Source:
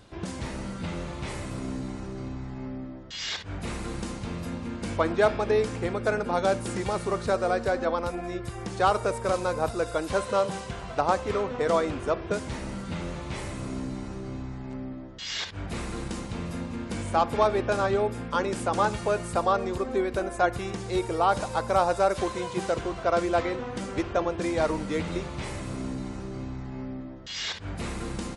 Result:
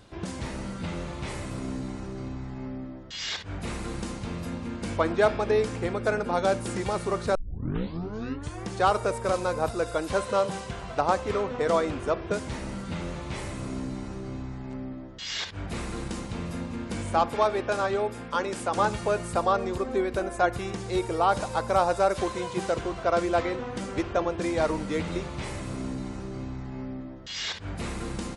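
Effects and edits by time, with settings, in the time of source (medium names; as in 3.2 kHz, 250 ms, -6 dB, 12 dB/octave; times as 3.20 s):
7.35 s: tape start 1.30 s
17.29–18.77 s: bass shelf 270 Hz -7.5 dB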